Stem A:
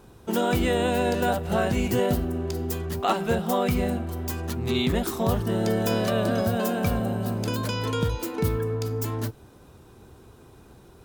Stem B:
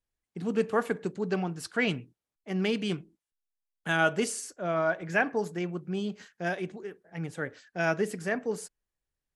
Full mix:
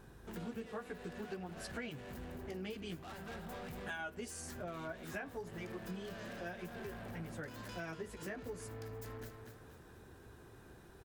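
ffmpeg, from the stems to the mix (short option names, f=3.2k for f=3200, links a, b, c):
-filter_complex "[0:a]equalizer=f=1.7k:t=o:w=0.31:g=12,acompressor=threshold=-34dB:ratio=2,asoftclip=type=tanh:threshold=-37dB,volume=-8dB,asplit=2[a][b];[b]volume=-6dB[c];[1:a]aeval=exprs='val(0)+0.00282*(sin(2*PI*50*n/s)+sin(2*PI*2*50*n/s)/2+sin(2*PI*3*50*n/s)/3+sin(2*PI*4*50*n/s)/4+sin(2*PI*5*50*n/s)/5)':c=same,asplit=2[d][e];[e]adelay=10.3,afreqshift=-1.6[f];[d][f]amix=inputs=2:normalize=1,volume=-3.5dB[g];[c]aecho=0:1:239|478|717|956|1195|1434:1|0.41|0.168|0.0689|0.0283|0.0116[h];[a][g][h]amix=inputs=3:normalize=0,acompressor=threshold=-41dB:ratio=6"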